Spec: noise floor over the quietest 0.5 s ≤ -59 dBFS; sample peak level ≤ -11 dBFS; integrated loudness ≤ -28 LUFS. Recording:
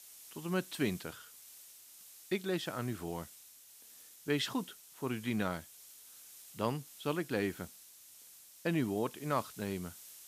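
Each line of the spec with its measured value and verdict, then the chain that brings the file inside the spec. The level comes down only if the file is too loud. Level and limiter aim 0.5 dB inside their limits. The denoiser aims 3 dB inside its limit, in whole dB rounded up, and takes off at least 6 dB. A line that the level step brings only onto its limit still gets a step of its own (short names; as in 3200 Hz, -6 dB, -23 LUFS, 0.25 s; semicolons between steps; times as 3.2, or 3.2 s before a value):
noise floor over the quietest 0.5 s -57 dBFS: fail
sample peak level -19.0 dBFS: OK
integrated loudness -37.5 LUFS: OK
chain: denoiser 6 dB, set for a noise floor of -57 dBFS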